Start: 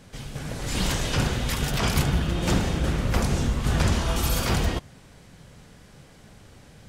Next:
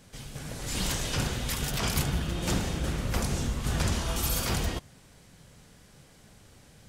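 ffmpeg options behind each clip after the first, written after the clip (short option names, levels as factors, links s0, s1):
-af "highshelf=f=4900:g=7.5,volume=0.501"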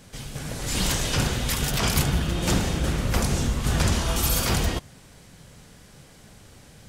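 -af "acontrast=43"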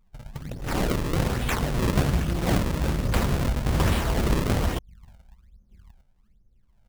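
-filter_complex "[0:a]asplit=2[s0][s1];[s1]adelay=1224,volume=0.0891,highshelf=f=4000:g=-27.6[s2];[s0][s2]amix=inputs=2:normalize=0,anlmdn=39.8,acrusher=samples=34:mix=1:aa=0.000001:lfo=1:lforange=54.4:lforate=1.2"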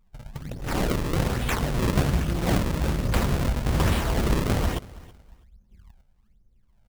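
-af "aecho=1:1:325|650:0.0891|0.0178"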